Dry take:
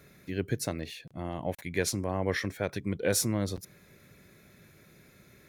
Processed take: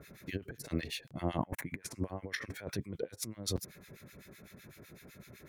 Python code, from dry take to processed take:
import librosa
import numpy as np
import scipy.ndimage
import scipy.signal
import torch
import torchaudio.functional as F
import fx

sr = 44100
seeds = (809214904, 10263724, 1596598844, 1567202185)

y = fx.graphic_eq_10(x, sr, hz=(125, 250, 1000, 2000, 4000, 8000), db=(4, 7, 7, 6, -9, 3), at=(1.38, 1.93), fade=0.02)
y = fx.over_compress(y, sr, threshold_db=-35.0, ratio=-0.5)
y = fx.harmonic_tremolo(y, sr, hz=7.9, depth_pct=100, crossover_hz=1300.0)
y = F.gain(torch.from_numpy(y), 2.0).numpy()